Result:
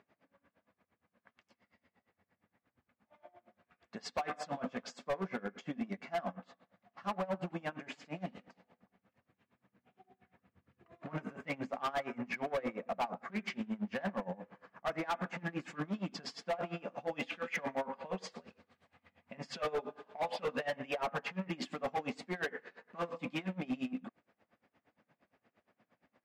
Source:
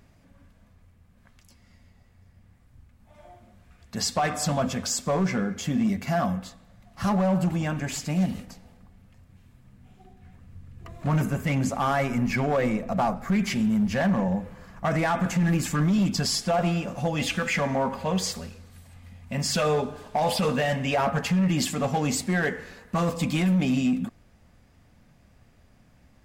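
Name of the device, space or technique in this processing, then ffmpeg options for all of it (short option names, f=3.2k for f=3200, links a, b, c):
helicopter radio: -af "highpass=330,lowpass=2.6k,aeval=exprs='val(0)*pow(10,-24*(0.5-0.5*cos(2*PI*8.6*n/s))/20)':c=same,asoftclip=type=hard:threshold=-28dB,volume=-2dB"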